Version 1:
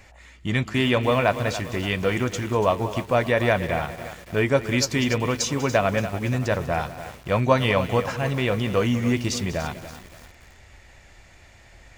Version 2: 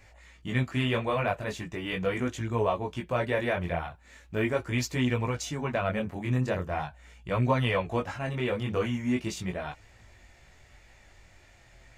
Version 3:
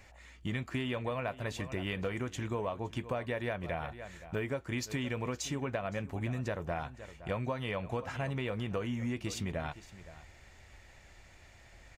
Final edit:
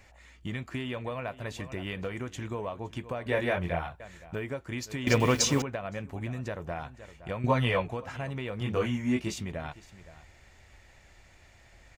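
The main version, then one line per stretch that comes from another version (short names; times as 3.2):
3
3.26–4 from 2
5.07–5.62 from 1
7.44–7.88 from 2
8.61–9.38 from 2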